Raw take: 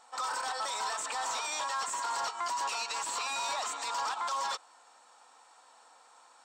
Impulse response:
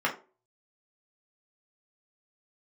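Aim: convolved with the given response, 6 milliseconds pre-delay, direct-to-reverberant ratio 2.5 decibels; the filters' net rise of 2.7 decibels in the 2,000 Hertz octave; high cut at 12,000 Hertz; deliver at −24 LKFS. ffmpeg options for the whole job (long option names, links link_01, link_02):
-filter_complex "[0:a]lowpass=12000,equalizer=frequency=2000:width_type=o:gain=3.5,asplit=2[link_01][link_02];[1:a]atrim=start_sample=2205,adelay=6[link_03];[link_02][link_03]afir=irnorm=-1:irlink=0,volume=-14dB[link_04];[link_01][link_04]amix=inputs=2:normalize=0,volume=6.5dB"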